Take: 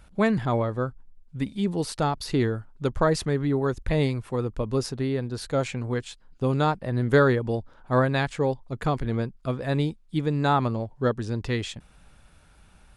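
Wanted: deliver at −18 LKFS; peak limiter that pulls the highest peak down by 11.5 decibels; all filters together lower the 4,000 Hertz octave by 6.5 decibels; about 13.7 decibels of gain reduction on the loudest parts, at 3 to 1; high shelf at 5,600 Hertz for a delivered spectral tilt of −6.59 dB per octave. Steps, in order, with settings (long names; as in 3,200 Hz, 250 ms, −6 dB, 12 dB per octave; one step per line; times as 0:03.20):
parametric band 4,000 Hz −5 dB
high-shelf EQ 5,600 Hz −7.5 dB
downward compressor 3 to 1, threshold −33 dBFS
level +23 dB
brickwall limiter −8 dBFS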